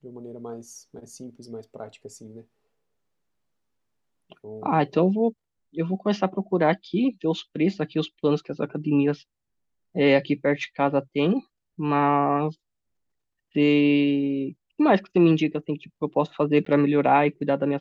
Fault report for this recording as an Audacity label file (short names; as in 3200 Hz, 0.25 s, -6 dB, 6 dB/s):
16.650000	16.660000	gap 14 ms